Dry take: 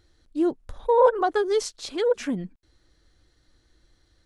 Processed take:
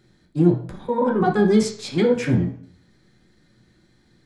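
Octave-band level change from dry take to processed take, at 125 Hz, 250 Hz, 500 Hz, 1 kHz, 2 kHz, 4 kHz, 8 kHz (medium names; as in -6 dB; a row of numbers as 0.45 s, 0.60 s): +20.5 dB, +10.0 dB, +0.5 dB, -1.5 dB, +3.5 dB, +2.0 dB, +1.5 dB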